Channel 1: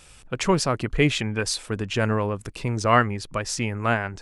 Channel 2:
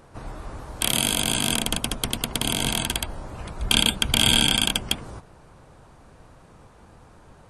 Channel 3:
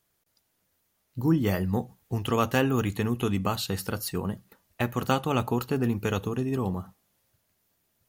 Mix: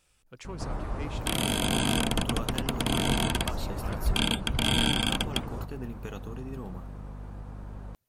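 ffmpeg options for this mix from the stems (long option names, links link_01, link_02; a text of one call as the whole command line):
ffmpeg -i stem1.wav -i stem2.wav -i stem3.wav -filter_complex "[0:a]asoftclip=type=tanh:threshold=-14.5dB,volume=-18.5dB[link_01];[1:a]highshelf=frequency=2500:gain=-10.5,aeval=exprs='val(0)+0.00794*(sin(2*PI*50*n/s)+sin(2*PI*2*50*n/s)/2+sin(2*PI*3*50*n/s)/3+sin(2*PI*4*50*n/s)/4+sin(2*PI*5*50*n/s)/5)':channel_layout=same,adelay=450,volume=2.5dB[link_02];[2:a]acompressor=threshold=-29dB:ratio=2,volume=-9dB,asplit=2[link_03][link_04];[link_04]apad=whole_len=185989[link_05];[link_01][link_05]sidechaincompress=threshold=-41dB:ratio=8:attack=16:release=390[link_06];[link_06][link_02][link_03]amix=inputs=3:normalize=0,alimiter=limit=-12.5dB:level=0:latency=1:release=412" out.wav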